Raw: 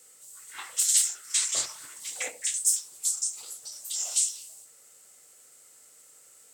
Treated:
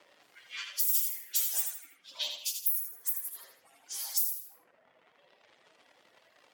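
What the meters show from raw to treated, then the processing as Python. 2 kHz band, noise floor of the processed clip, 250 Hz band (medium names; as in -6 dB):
-6.0 dB, -67 dBFS, no reading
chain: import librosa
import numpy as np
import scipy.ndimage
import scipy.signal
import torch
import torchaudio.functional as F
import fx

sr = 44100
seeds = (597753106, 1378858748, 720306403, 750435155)

p1 = fx.partial_stretch(x, sr, pct=122)
p2 = fx.dmg_crackle(p1, sr, seeds[0], per_s=170.0, level_db=-50.0)
p3 = fx.env_lowpass(p2, sr, base_hz=1200.0, full_db=-29.0)
p4 = fx.highpass(p3, sr, hz=290.0, slope=6)
p5 = fx.high_shelf(p4, sr, hz=3500.0, db=8.0)
p6 = fx.dereverb_blind(p5, sr, rt60_s=1.2)
p7 = p6 + fx.echo_feedback(p6, sr, ms=79, feedback_pct=30, wet_db=-6.5, dry=0)
y = fx.band_squash(p7, sr, depth_pct=70)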